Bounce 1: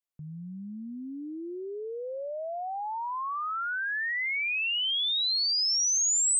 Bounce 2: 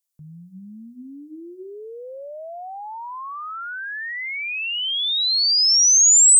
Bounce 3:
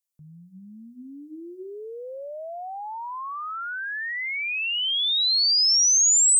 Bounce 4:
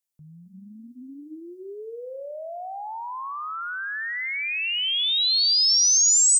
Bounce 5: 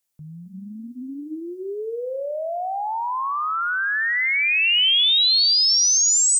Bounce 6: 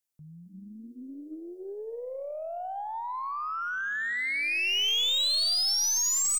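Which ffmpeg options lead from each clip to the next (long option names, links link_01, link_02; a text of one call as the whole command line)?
ffmpeg -i in.wav -af "bass=frequency=250:gain=0,treble=frequency=4000:gain=14,bandreject=frequency=60:width_type=h:width=6,bandreject=frequency=120:width_type=h:width=6,bandreject=frequency=180:width_type=h:width=6,bandreject=frequency=240:width_type=h:width=6,bandreject=frequency=300:width_type=h:width=6,bandreject=frequency=360:width_type=h:width=6" out.wav
ffmpeg -i in.wav -af "dynaudnorm=framelen=310:gausssize=7:maxgain=5dB,volume=-5.5dB" out.wav
ffmpeg -i in.wav -filter_complex "[0:a]asplit=5[link_01][link_02][link_03][link_04][link_05];[link_02]adelay=266,afreqshift=56,volume=-12dB[link_06];[link_03]adelay=532,afreqshift=112,volume=-19.5dB[link_07];[link_04]adelay=798,afreqshift=168,volume=-27.1dB[link_08];[link_05]adelay=1064,afreqshift=224,volume=-34.6dB[link_09];[link_01][link_06][link_07][link_08][link_09]amix=inputs=5:normalize=0" out.wav
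ffmpeg -i in.wav -af "alimiter=limit=-20.5dB:level=0:latency=1,volume=8dB" out.wav
ffmpeg -i in.wav -filter_complex "[0:a]asplit=5[link_01][link_02][link_03][link_04][link_05];[link_02]adelay=296,afreqshift=150,volume=-20.5dB[link_06];[link_03]adelay=592,afreqshift=300,volume=-25.4dB[link_07];[link_04]adelay=888,afreqshift=450,volume=-30.3dB[link_08];[link_05]adelay=1184,afreqshift=600,volume=-35.1dB[link_09];[link_01][link_06][link_07][link_08][link_09]amix=inputs=5:normalize=0,aeval=exprs='0.282*(cos(1*acos(clip(val(0)/0.282,-1,1)))-cos(1*PI/2))+0.0562*(cos(2*acos(clip(val(0)/0.282,-1,1)))-cos(2*PI/2))+0.0708*(cos(4*acos(clip(val(0)/0.282,-1,1)))-cos(4*PI/2))+0.0316*(cos(6*acos(clip(val(0)/0.282,-1,1)))-cos(6*PI/2))':channel_layout=same,volume=-9dB" out.wav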